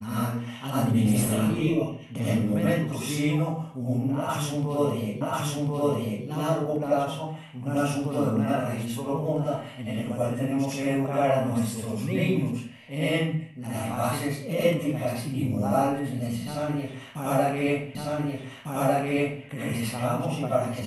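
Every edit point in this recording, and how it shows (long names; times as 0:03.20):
0:05.21: the same again, the last 1.04 s
0:17.95: the same again, the last 1.5 s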